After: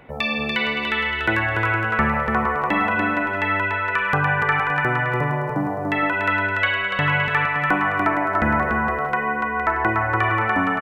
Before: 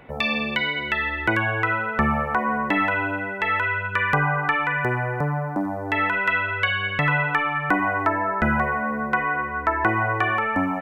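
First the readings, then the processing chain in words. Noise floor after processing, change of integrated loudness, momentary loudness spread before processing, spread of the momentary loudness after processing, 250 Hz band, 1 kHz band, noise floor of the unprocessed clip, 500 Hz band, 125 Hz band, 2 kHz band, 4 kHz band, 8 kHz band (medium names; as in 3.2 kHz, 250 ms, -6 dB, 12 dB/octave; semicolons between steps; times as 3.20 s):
-26 dBFS, +2.0 dB, 4 LU, 3 LU, +1.5 dB, +2.0 dB, -30 dBFS, +2.0 dB, +1.5 dB, +2.0 dB, +2.0 dB, no reading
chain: bouncing-ball echo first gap 290 ms, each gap 0.6×, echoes 5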